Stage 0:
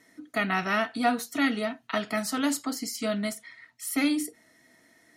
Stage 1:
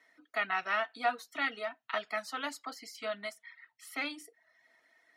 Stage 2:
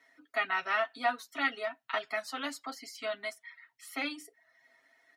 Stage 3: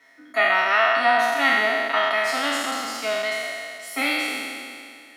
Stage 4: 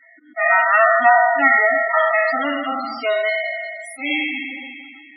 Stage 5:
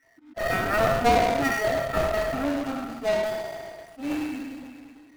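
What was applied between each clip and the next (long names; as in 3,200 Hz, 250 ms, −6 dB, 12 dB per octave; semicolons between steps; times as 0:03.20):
reverb reduction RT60 0.59 s; three-way crossover with the lows and the highs turned down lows −20 dB, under 530 Hz, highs −15 dB, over 4,200 Hz; level −3 dB
comb filter 7.4 ms, depth 66%
peak hold with a decay on every bin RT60 2.31 s; level +7.5 dB
volume swells 169 ms; spectral peaks only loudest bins 16; level +6.5 dB
running median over 41 samples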